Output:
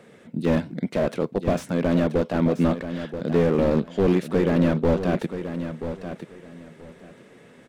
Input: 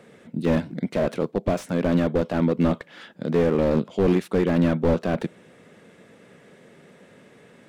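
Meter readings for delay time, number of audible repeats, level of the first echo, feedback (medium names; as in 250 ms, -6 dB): 981 ms, 2, -10.0 dB, 20%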